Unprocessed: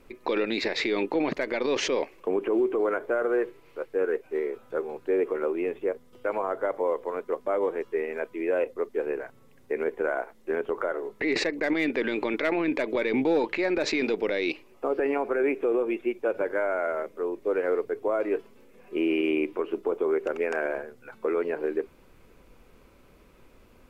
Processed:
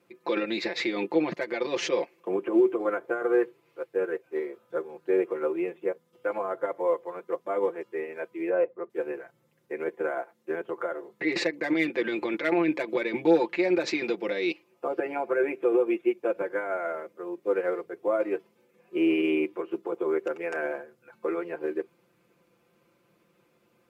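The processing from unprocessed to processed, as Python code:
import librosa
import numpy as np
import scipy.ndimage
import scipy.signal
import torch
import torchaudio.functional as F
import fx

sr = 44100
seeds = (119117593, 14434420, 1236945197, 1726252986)

y = fx.lowpass(x, sr, hz=1700.0, slope=12, at=(8.49, 8.9))
y = scipy.signal.sosfilt(scipy.signal.butter(4, 100.0, 'highpass', fs=sr, output='sos'), y)
y = y + 0.84 * np.pad(y, (int(5.8 * sr / 1000.0), 0))[:len(y)]
y = fx.upward_expand(y, sr, threshold_db=-37.0, expansion=1.5)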